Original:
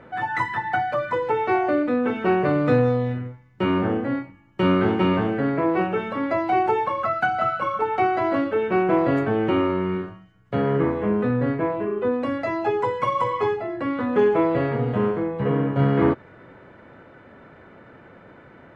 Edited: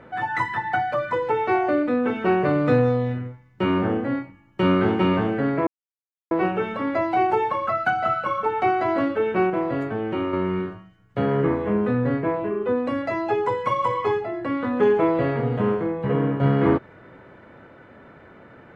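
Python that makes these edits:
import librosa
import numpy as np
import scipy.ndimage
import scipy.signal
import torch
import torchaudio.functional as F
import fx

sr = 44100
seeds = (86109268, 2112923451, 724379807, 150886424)

y = fx.edit(x, sr, fx.insert_silence(at_s=5.67, length_s=0.64),
    fx.clip_gain(start_s=8.86, length_s=0.83, db=-5.0), tone=tone)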